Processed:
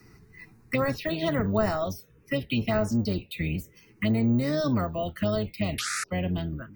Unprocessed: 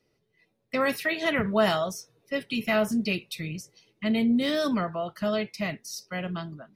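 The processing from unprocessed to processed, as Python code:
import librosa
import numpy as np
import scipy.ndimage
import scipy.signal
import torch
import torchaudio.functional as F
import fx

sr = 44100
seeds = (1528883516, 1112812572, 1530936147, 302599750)

y = fx.octave_divider(x, sr, octaves=1, level_db=-2.0)
y = fx.peak_eq(y, sr, hz=8700.0, db=-2.0, octaves=0.2)
y = np.repeat(scipy.signal.resample_poly(y, 1, 2), 2)[:len(y)]
y = fx.spec_paint(y, sr, seeds[0], shape='noise', start_s=5.78, length_s=0.26, low_hz=1200.0, high_hz=12000.0, level_db=-24.0)
y = fx.env_phaser(y, sr, low_hz=570.0, high_hz=3300.0, full_db=-20.0)
y = fx.band_squash(y, sr, depth_pct=70)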